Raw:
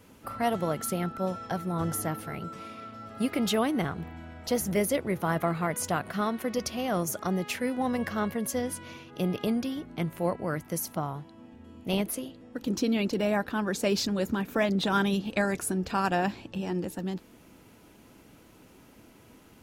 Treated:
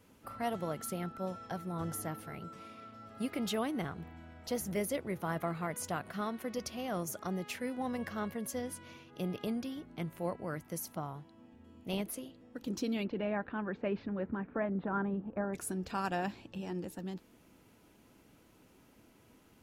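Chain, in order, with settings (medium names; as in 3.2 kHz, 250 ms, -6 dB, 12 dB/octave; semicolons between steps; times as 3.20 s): 13.03–15.53 s: low-pass 3.1 kHz -> 1.3 kHz 24 dB/octave; trim -8 dB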